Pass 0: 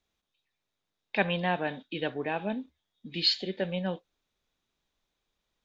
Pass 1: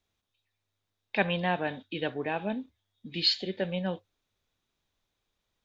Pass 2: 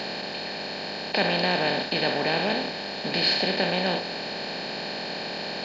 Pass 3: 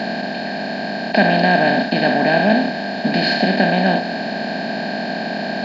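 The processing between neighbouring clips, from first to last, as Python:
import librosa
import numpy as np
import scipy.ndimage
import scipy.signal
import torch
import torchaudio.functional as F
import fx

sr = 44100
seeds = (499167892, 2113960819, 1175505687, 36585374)

y1 = fx.peak_eq(x, sr, hz=99.0, db=14.5, octaves=0.2)
y2 = fx.bin_compress(y1, sr, power=0.2)
y2 = F.gain(torch.from_numpy(y2), -2.0).numpy()
y3 = fx.small_body(y2, sr, hz=(230.0, 670.0, 1600.0), ring_ms=30, db=17)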